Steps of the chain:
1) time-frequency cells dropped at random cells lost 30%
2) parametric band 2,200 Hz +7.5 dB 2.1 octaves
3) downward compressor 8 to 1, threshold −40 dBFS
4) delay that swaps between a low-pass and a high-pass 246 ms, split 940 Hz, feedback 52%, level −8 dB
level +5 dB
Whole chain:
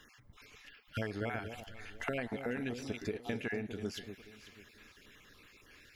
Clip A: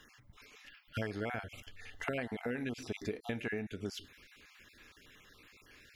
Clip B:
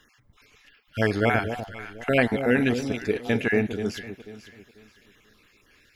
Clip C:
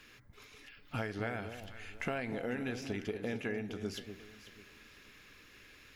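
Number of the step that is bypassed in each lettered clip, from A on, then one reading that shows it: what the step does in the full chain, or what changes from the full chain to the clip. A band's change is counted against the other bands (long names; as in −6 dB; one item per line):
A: 4, echo-to-direct ratio −11.0 dB to none audible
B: 3, average gain reduction 10.5 dB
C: 1, change in crest factor −2.0 dB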